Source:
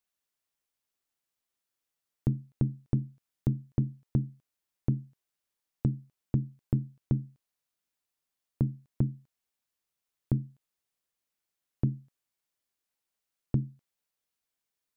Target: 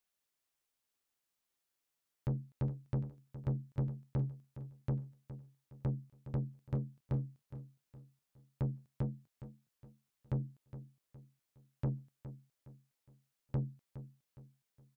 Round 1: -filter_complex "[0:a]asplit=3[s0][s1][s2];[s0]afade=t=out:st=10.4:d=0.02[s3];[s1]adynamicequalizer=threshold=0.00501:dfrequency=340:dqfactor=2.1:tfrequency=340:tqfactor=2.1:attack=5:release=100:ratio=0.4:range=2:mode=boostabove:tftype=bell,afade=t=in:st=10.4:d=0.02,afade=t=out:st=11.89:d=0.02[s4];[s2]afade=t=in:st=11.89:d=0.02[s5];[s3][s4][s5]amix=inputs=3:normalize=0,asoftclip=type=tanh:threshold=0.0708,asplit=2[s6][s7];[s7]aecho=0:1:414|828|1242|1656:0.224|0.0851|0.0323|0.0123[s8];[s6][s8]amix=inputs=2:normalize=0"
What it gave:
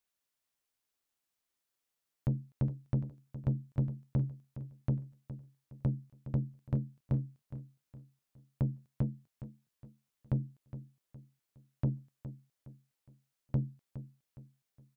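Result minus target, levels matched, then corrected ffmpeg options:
saturation: distortion -5 dB
-filter_complex "[0:a]asplit=3[s0][s1][s2];[s0]afade=t=out:st=10.4:d=0.02[s3];[s1]adynamicequalizer=threshold=0.00501:dfrequency=340:dqfactor=2.1:tfrequency=340:tqfactor=2.1:attack=5:release=100:ratio=0.4:range=2:mode=boostabove:tftype=bell,afade=t=in:st=10.4:d=0.02,afade=t=out:st=11.89:d=0.02[s4];[s2]afade=t=in:st=11.89:d=0.02[s5];[s3][s4][s5]amix=inputs=3:normalize=0,asoftclip=type=tanh:threshold=0.0335,asplit=2[s6][s7];[s7]aecho=0:1:414|828|1242|1656:0.224|0.0851|0.0323|0.0123[s8];[s6][s8]amix=inputs=2:normalize=0"

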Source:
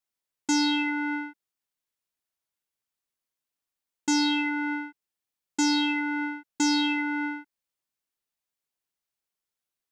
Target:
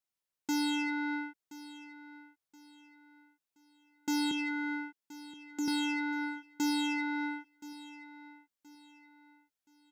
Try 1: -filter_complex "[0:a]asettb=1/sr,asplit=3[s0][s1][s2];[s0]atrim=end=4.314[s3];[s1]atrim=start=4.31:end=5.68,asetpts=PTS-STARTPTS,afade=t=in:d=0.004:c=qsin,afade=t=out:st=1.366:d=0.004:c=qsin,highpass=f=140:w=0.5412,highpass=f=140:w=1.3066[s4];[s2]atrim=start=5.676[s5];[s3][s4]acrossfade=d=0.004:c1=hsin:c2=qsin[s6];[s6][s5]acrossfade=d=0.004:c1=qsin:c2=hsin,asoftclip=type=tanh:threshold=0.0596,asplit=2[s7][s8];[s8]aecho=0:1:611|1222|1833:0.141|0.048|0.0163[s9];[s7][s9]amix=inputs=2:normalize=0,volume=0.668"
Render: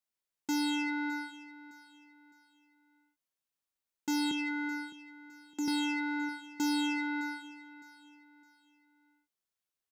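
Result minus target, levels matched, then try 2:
echo 413 ms early
-filter_complex "[0:a]asettb=1/sr,asplit=3[s0][s1][s2];[s0]atrim=end=4.314[s3];[s1]atrim=start=4.31:end=5.68,asetpts=PTS-STARTPTS,afade=t=in:d=0.004:c=qsin,afade=t=out:st=1.366:d=0.004:c=qsin,highpass=f=140:w=0.5412,highpass=f=140:w=1.3066[s4];[s2]atrim=start=5.676[s5];[s3][s4]acrossfade=d=0.004:c1=hsin:c2=qsin[s6];[s6][s5]acrossfade=d=0.004:c1=qsin:c2=hsin,asoftclip=type=tanh:threshold=0.0596,asplit=2[s7][s8];[s8]aecho=0:1:1024|2048|3072:0.141|0.048|0.0163[s9];[s7][s9]amix=inputs=2:normalize=0,volume=0.668"

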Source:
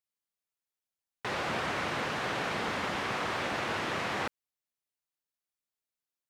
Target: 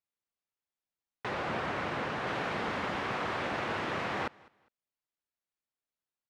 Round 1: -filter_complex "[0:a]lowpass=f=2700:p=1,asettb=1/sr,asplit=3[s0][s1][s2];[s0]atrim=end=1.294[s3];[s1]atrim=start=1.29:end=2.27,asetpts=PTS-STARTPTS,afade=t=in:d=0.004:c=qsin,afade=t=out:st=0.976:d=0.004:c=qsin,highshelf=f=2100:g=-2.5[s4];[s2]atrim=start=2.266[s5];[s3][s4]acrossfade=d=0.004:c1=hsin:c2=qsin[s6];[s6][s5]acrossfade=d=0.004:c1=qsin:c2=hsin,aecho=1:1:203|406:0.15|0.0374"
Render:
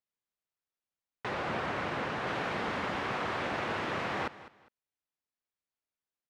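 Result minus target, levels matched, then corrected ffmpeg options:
echo-to-direct +8 dB
-filter_complex "[0:a]lowpass=f=2700:p=1,asettb=1/sr,asplit=3[s0][s1][s2];[s0]atrim=end=1.294[s3];[s1]atrim=start=1.29:end=2.27,asetpts=PTS-STARTPTS,afade=t=in:d=0.004:c=qsin,afade=t=out:st=0.976:d=0.004:c=qsin,highshelf=f=2100:g=-2.5[s4];[s2]atrim=start=2.266[s5];[s3][s4]acrossfade=d=0.004:c1=hsin:c2=qsin[s6];[s6][s5]acrossfade=d=0.004:c1=qsin:c2=hsin,aecho=1:1:203|406:0.0596|0.0149"

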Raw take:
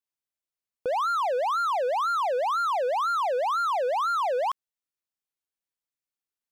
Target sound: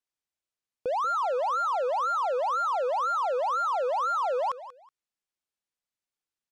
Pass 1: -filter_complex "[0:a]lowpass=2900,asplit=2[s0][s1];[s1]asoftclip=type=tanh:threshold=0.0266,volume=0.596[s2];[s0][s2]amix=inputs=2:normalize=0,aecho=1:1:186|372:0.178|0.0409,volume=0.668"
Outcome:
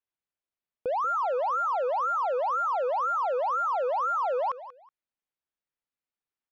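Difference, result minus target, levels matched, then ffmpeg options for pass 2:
8 kHz band -8.5 dB
-filter_complex "[0:a]lowpass=9100,asplit=2[s0][s1];[s1]asoftclip=type=tanh:threshold=0.0266,volume=0.596[s2];[s0][s2]amix=inputs=2:normalize=0,aecho=1:1:186|372:0.178|0.0409,volume=0.668"

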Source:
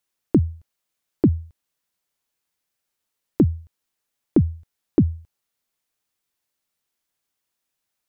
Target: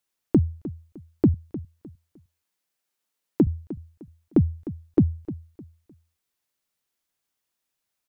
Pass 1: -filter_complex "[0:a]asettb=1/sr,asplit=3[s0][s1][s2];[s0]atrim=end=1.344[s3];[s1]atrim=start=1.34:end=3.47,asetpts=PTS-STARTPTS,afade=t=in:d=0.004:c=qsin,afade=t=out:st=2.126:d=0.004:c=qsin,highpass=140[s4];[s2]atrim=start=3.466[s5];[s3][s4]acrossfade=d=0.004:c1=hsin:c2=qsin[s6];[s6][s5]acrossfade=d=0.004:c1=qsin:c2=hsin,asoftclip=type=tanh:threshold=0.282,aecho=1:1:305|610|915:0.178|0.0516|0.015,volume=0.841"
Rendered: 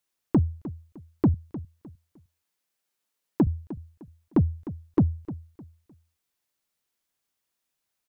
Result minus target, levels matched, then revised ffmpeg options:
saturation: distortion +18 dB
-filter_complex "[0:a]asettb=1/sr,asplit=3[s0][s1][s2];[s0]atrim=end=1.344[s3];[s1]atrim=start=1.34:end=3.47,asetpts=PTS-STARTPTS,afade=t=in:d=0.004:c=qsin,afade=t=out:st=2.126:d=0.004:c=qsin,highpass=140[s4];[s2]atrim=start=3.466[s5];[s3][s4]acrossfade=d=0.004:c1=hsin:c2=qsin[s6];[s6][s5]acrossfade=d=0.004:c1=qsin:c2=hsin,asoftclip=type=tanh:threshold=0.944,aecho=1:1:305|610|915:0.178|0.0516|0.015,volume=0.841"

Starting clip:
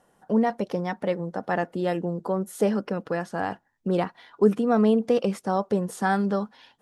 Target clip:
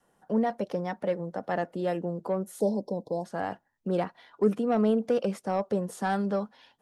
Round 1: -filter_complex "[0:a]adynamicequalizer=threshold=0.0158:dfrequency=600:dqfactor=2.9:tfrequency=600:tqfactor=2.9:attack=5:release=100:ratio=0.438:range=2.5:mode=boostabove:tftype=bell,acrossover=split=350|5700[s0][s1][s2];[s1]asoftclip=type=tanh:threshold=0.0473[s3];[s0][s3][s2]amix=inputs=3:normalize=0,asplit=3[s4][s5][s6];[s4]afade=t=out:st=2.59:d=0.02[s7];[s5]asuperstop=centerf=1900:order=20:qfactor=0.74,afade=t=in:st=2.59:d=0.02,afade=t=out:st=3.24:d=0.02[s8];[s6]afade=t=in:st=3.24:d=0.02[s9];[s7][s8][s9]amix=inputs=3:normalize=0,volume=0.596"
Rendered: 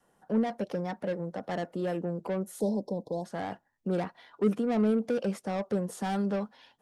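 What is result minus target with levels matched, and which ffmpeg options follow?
saturation: distortion +12 dB
-filter_complex "[0:a]adynamicequalizer=threshold=0.0158:dfrequency=600:dqfactor=2.9:tfrequency=600:tqfactor=2.9:attack=5:release=100:ratio=0.438:range=2.5:mode=boostabove:tftype=bell,acrossover=split=350|5700[s0][s1][s2];[s1]asoftclip=type=tanh:threshold=0.168[s3];[s0][s3][s2]amix=inputs=3:normalize=0,asplit=3[s4][s5][s6];[s4]afade=t=out:st=2.59:d=0.02[s7];[s5]asuperstop=centerf=1900:order=20:qfactor=0.74,afade=t=in:st=2.59:d=0.02,afade=t=out:st=3.24:d=0.02[s8];[s6]afade=t=in:st=3.24:d=0.02[s9];[s7][s8][s9]amix=inputs=3:normalize=0,volume=0.596"

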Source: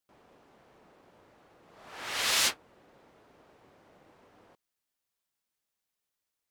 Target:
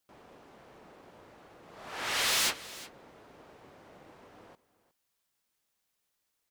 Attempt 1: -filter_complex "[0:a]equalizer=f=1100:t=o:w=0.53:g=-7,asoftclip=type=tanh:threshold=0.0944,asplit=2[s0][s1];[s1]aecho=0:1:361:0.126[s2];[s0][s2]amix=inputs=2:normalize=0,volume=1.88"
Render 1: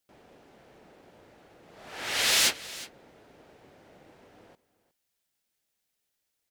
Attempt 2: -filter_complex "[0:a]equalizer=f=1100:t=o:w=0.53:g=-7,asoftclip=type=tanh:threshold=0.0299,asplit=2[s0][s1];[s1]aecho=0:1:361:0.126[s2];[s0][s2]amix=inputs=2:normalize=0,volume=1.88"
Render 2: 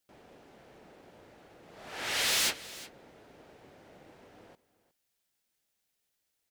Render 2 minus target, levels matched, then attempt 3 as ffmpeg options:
1 kHz band -3.0 dB
-filter_complex "[0:a]asoftclip=type=tanh:threshold=0.0299,asplit=2[s0][s1];[s1]aecho=0:1:361:0.126[s2];[s0][s2]amix=inputs=2:normalize=0,volume=1.88"

